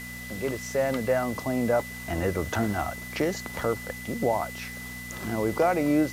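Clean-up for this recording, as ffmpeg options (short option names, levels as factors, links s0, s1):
-af "adeclick=t=4,bandreject=f=61.1:t=h:w=4,bandreject=f=122.2:t=h:w=4,bandreject=f=183.3:t=h:w=4,bandreject=f=244.4:t=h:w=4,bandreject=f=2000:w=30,afwtdn=0.0056"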